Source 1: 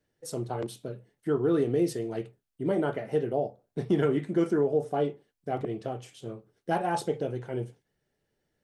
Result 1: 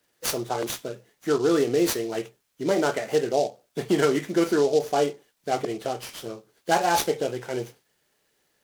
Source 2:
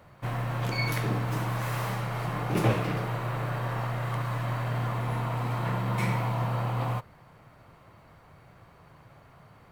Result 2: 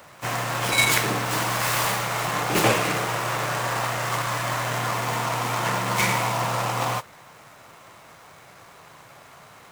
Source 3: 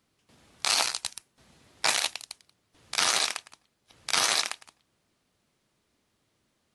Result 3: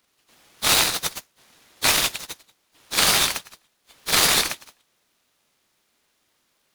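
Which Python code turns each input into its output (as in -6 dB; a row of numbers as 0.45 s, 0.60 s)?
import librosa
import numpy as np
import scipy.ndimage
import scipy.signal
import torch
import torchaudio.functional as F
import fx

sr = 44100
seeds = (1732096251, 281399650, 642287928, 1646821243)

y = fx.freq_compress(x, sr, knee_hz=3000.0, ratio=1.5)
y = fx.riaa(y, sr, side='recording')
y = fx.noise_mod_delay(y, sr, seeds[0], noise_hz=4600.0, depth_ms=0.031)
y = y * 10.0 ** (-26 / 20.0) / np.sqrt(np.mean(np.square(y)))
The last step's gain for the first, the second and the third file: +8.0 dB, +9.0 dB, +2.5 dB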